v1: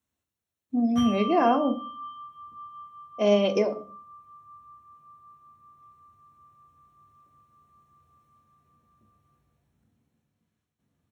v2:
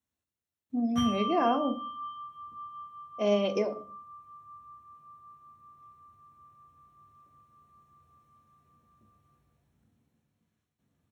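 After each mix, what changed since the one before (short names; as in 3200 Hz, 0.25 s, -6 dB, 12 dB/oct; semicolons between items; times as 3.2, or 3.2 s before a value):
speech -5.0 dB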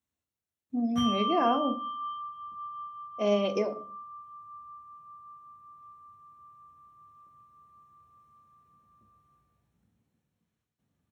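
background: send off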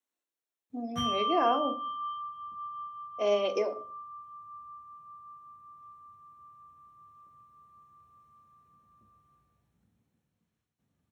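speech: add HPF 300 Hz 24 dB/oct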